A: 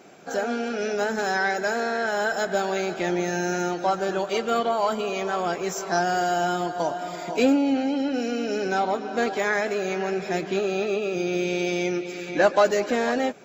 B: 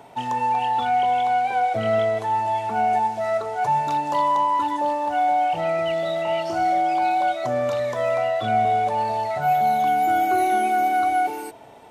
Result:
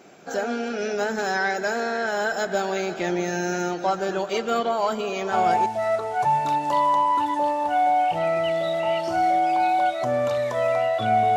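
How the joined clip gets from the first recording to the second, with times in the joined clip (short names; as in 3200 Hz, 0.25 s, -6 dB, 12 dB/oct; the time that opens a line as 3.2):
A
5.49 switch to B from 2.91 s, crossfade 0.34 s logarithmic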